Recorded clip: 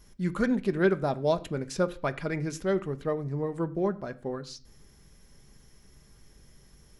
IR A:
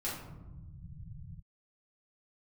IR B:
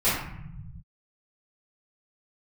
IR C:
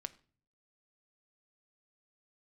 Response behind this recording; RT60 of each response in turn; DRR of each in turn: C; non-exponential decay, 0.75 s, 0.45 s; −8.5, −13.5, 10.0 decibels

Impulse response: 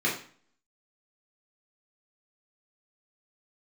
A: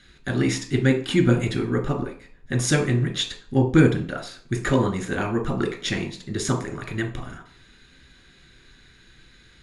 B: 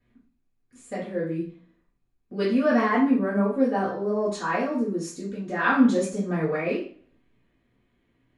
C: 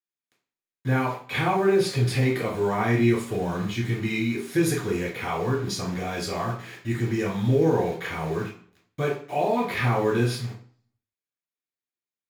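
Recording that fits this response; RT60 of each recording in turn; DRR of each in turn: C; 0.45, 0.45, 0.45 seconds; 3.0, −13.0, −6.0 decibels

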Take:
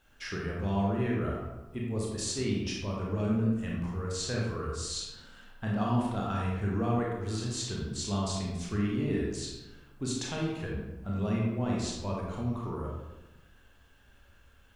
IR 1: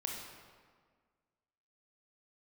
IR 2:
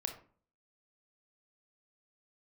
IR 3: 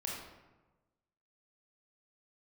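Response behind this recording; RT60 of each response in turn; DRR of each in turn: 3; 1.7, 0.45, 1.2 seconds; −0.5, 4.5, −3.5 decibels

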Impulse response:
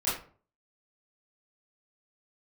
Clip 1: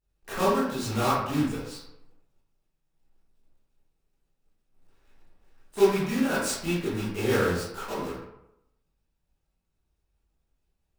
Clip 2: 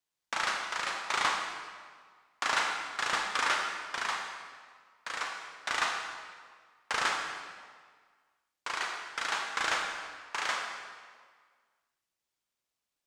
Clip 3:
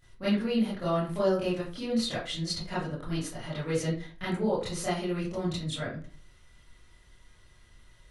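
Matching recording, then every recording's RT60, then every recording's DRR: 3; 0.85, 1.7, 0.45 seconds; −12.0, 1.0, −11.5 decibels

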